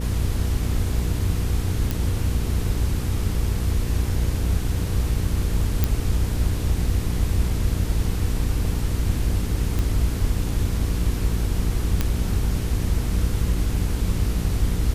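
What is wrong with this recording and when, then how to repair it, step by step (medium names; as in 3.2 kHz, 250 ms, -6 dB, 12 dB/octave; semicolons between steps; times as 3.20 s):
hum 60 Hz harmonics 8 -26 dBFS
1.91 s: pop
5.84 s: pop -6 dBFS
9.79 s: pop
12.01 s: pop -7 dBFS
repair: de-click; de-hum 60 Hz, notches 8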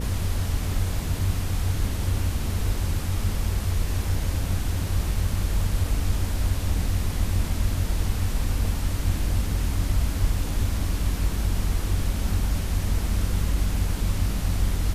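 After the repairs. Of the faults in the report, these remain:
nothing left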